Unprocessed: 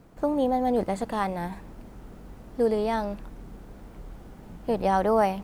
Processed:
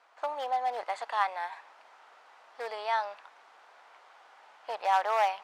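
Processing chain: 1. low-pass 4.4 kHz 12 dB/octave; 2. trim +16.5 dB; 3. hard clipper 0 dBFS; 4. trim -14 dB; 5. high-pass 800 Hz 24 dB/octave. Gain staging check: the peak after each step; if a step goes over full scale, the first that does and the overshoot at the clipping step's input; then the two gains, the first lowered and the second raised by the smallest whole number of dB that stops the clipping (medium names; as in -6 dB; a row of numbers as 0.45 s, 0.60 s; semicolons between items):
-11.0 dBFS, +5.5 dBFS, 0.0 dBFS, -14.0 dBFS, -14.5 dBFS; step 2, 5.5 dB; step 2 +10.5 dB, step 4 -8 dB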